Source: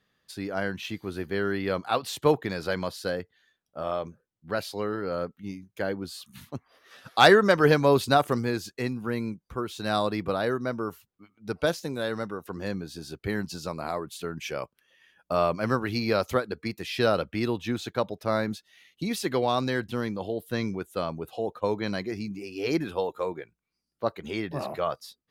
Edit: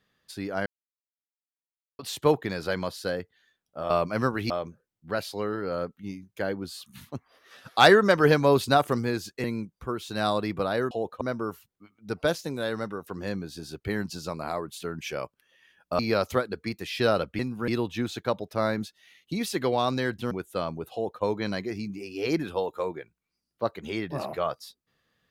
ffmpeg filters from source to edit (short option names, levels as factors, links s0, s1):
-filter_complex "[0:a]asplit=12[s0][s1][s2][s3][s4][s5][s6][s7][s8][s9][s10][s11];[s0]atrim=end=0.66,asetpts=PTS-STARTPTS,afade=t=out:st=0.656:d=0.004:c=hsin[s12];[s1]atrim=start=0.66:end=1.99,asetpts=PTS-STARTPTS,volume=0[s13];[s2]atrim=start=1.99:end=3.902,asetpts=PTS-STARTPTS,afade=t=in:d=0.004:c=hsin[s14];[s3]atrim=start=15.378:end=15.982[s15];[s4]atrim=start=3.898:end=8.842[s16];[s5]atrim=start=9.128:end=10.602[s17];[s6]atrim=start=21.338:end=21.642[s18];[s7]atrim=start=10.598:end=15.382[s19];[s8]atrim=start=15.978:end=17.382[s20];[s9]atrim=start=8.838:end=9.132[s21];[s10]atrim=start=17.378:end=20.012[s22];[s11]atrim=start=20.718[s23];[s12][s13][s14]concat=n=3:v=0:a=1[s24];[s24][s15]acrossfade=d=0.004:c1=hsin:c2=hsin[s25];[s25][s16]acrossfade=d=0.004:c1=hsin:c2=hsin[s26];[s26][s17]acrossfade=d=0.004:c1=hsin:c2=hsin[s27];[s27][s18]acrossfade=d=0.004:c1=hsin:c2=hsin[s28];[s28][s19]acrossfade=d=0.004:c1=hsin:c2=hsin[s29];[s29][s20]acrossfade=d=0.004:c1=hsin:c2=hsin[s30];[s30][s21]acrossfade=d=0.004:c1=hsin:c2=hsin[s31];[s31][s22]acrossfade=d=0.004:c1=hsin:c2=hsin[s32];[s32][s23]acrossfade=d=0.004:c1=hsin:c2=hsin"